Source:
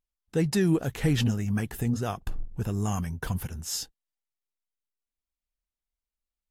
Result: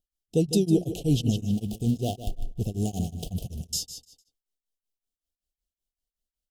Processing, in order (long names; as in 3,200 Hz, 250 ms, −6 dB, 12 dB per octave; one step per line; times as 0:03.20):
0:01.49–0:03.73: gap after every zero crossing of 0.2 ms
Chebyshev band-stop filter 730–2,900 Hz, order 4
repeating echo 152 ms, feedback 28%, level −9.5 dB
tremolo along a rectified sine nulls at 5.3 Hz
level +4 dB